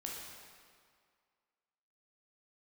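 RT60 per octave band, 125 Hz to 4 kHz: 1.8, 1.9, 2.0, 2.1, 1.8, 1.6 s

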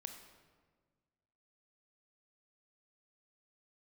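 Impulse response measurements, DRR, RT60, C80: 5.0 dB, 1.5 s, 8.0 dB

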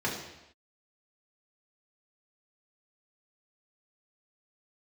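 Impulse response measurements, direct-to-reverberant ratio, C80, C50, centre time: -5.0 dB, 7.0 dB, 4.5 dB, 44 ms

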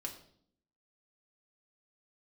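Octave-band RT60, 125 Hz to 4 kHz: 0.80, 0.95, 0.70, 0.55, 0.50, 0.55 s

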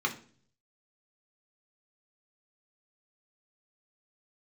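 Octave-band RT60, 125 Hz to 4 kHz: 0.90, 0.65, 0.50, 0.40, 0.40, 0.45 s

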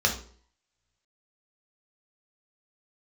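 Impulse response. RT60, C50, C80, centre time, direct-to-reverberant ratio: 0.50 s, 9.0 dB, 14.5 dB, 17 ms, 0.0 dB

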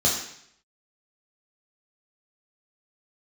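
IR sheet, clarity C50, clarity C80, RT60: 4.5 dB, 7.5 dB, 0.70 s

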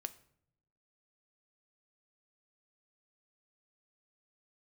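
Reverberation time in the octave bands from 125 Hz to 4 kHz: 1.1, 1.0, 0.75, 0.60, 0.55, 0.45 s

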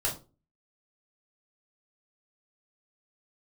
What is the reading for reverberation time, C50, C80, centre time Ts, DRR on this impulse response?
0.35 s, 10.5 dB, 17.0 dB, 21 ms, -3.0 dB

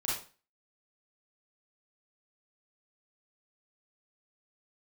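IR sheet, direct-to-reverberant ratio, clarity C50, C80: -7.0 dB, 0.5 dB, 8.0 dB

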